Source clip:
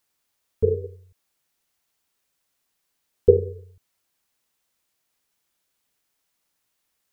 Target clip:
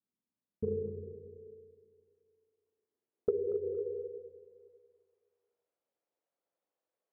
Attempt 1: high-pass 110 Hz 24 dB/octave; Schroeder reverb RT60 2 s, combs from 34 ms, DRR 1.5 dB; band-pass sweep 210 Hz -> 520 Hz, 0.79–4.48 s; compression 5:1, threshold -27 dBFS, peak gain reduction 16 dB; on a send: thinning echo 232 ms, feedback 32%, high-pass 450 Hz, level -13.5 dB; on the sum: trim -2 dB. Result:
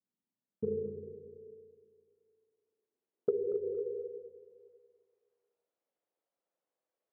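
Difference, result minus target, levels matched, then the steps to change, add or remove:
125 Hz band -5.0 dB
remove: high-pass 110 Hz 24 dB/octave

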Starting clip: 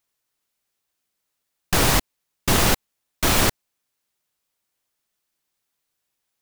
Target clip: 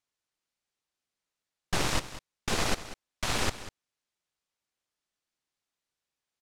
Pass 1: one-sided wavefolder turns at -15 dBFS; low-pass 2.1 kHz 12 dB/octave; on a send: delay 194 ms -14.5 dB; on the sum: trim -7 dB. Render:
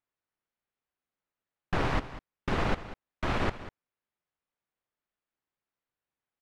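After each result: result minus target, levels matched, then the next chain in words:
8 kHz band -17.5 dB; one-sided wavefolder: distortion -11 dB
one-sided wavefolder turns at -15 dBFS; low-pass 7.6 kHz 12 dB/octave; on a send: delay 194 ms -14.5 dB; on the sum: trim -7 dB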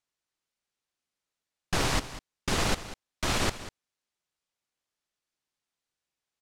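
one-sided wavefolder: distortion -11 dB
one-sided wavefolder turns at -22.5 dBFS; low-pass 7.6 kHz 12 dB/octave; on a send: delay 194 ms -14.5 dB; on the sum: trim -7 dB

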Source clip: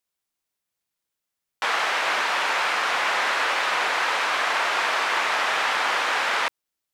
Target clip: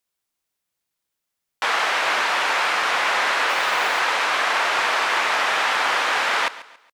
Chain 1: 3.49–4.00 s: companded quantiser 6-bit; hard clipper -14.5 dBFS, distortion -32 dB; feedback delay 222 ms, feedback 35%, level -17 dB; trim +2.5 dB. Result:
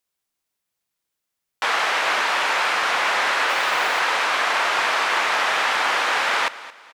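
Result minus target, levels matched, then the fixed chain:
echo 83 ms late
3.49–4.00 s: companded quantiser 6-bit; hard clipper -14.5 dBFS, distortion -32 dB; feedback delay 139 ms, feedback 35%, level -17 dB; trim +2.5 dB

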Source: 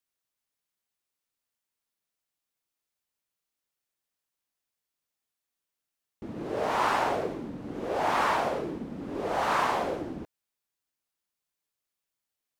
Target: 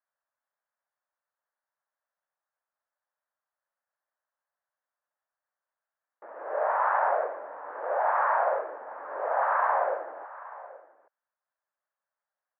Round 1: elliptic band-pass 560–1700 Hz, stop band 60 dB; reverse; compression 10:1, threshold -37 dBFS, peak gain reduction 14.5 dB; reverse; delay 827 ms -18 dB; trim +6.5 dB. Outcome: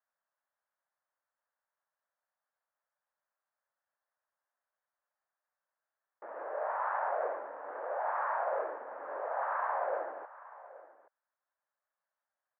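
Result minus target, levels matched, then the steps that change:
compression: peak gain reduction +8.5 dB
change: compression 10:1, threshold -27.5 dBFS, peak gain reduction 6 dB

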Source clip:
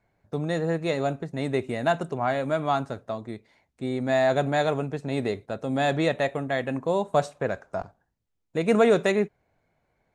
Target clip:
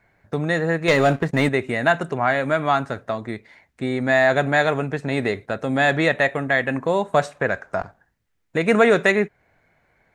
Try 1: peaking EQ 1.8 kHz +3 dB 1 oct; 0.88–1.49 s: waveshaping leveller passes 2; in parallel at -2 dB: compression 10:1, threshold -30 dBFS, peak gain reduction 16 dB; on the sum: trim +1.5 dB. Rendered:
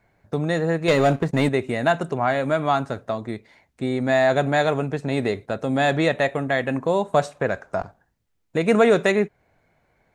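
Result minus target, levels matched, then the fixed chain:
2 kHz band -4.0 dB
peaking EQ 1.8 kHz +9.5 dB 1 oct; 0.88–1.49 s: waveshaping leveller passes 2; in parallel at -2 dB: compression 10:1, threshold -30 dBFS, peak gain reduction 17 dB; on the sum: trim +1.5 dB

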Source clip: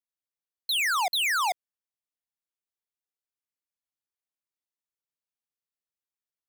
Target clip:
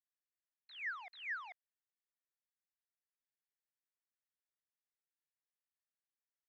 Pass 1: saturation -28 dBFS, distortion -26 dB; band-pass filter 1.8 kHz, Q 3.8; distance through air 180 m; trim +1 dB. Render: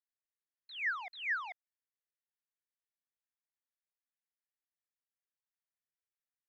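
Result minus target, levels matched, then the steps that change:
saturation: distortion -8 dB
change: saturation -36 dBFS, distortion -18 dB

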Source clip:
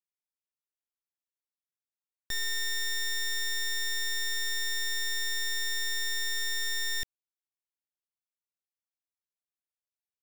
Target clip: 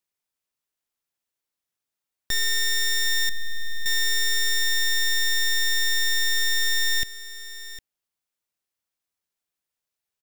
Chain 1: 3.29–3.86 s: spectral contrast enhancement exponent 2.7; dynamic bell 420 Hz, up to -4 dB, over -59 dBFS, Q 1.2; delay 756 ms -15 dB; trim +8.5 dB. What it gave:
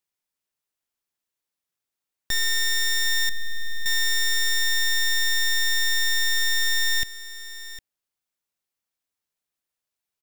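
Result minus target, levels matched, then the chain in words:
500 Hz band -3.5 dB
3.29–3.86 s: spectral contrast enhancement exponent 2.7; dynamic bell 940 Hz, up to -4 dB, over -59 dBFS, Q 1.2; delay 756 ms -15 dB; trim +8.5 dB

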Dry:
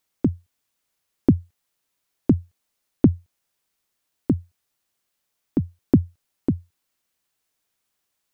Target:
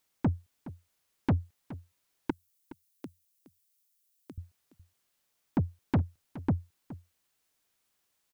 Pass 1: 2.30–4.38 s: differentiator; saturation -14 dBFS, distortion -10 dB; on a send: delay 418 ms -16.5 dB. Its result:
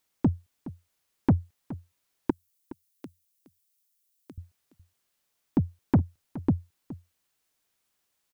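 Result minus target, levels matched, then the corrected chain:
saturation: distortion -5 dB
2.30–4.38 s: differentiator; saturation -21 dBFS, distortion -5 dB; on a send: delay 418 ms -16.5 dB

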